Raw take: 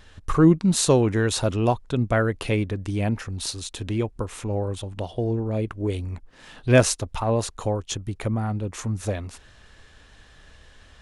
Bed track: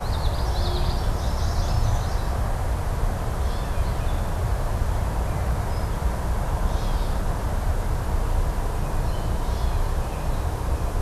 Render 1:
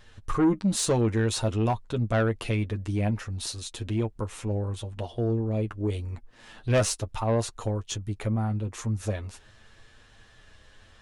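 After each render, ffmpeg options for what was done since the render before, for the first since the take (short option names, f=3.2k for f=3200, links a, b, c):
-af "flanger=delay=8.4:depth=1.3:regen=20:speed=0.8:shape=triangular,asoftclip=type=tanh:threshold=-16.5dB"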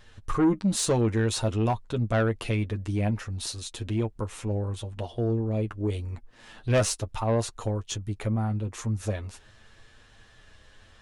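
-af anull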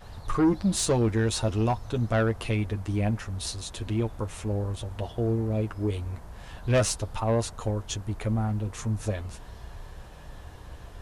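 -filter_complex "[1:a]volume=-19dB[a];[0:a][a]amix=inputs=2:normalize=0"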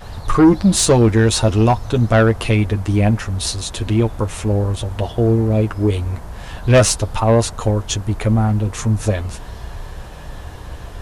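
-af "volume=11.5dB"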